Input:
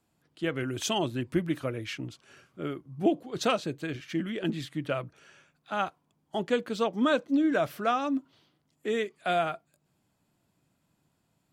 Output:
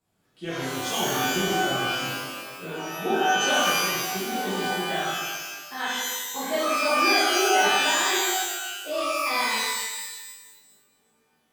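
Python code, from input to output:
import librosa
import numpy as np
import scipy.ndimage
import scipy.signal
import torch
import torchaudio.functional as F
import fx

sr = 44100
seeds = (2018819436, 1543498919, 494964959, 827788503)

y = fx.pitch_glide(x, sr, semitones=7.5, runs='starting unshifted')
y = fx.rev_shimmer(y, sr, seeds[0], rt60_s=1.2, semitones=12, shimmer_db=-2, drr_db=-10.0)
y = F.gain(torch.from_numpy(y), -8.0).numpy()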